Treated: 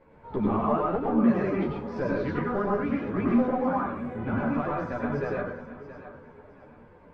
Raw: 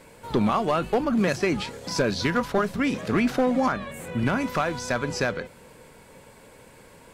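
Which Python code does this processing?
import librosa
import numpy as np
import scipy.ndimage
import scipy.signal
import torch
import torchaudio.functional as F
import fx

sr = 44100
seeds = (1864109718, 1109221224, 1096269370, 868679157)

y = scipy.signal.sosfilt(scipy.signal.butter(2, 1400.0, 'lowpass', fs=sr, output='sos'), x)
y = fx.echo_feedback(y, sr, ms=672, feedback_pct=28, wet_db=-13.5)
y = fx.rev_plate(y, sr, seeds[0], rt60_s=0.52, hf_ratio=0.5, predelay_ms=85, drr_db=-3.0)
y = fx.ensemble(y, sr)
y = F.gain(torch.from_numpy(y), -4.0).numpy()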